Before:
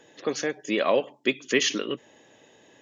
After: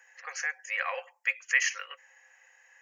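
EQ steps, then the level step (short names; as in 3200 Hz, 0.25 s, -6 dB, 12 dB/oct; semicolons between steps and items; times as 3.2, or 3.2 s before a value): rippled Chebyshev high-pass 510 Hz, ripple 9 dB; high shelf 4800 Hz +5.5 dB; fixed phaser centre 1500 Hz, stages 4; +5.0 dB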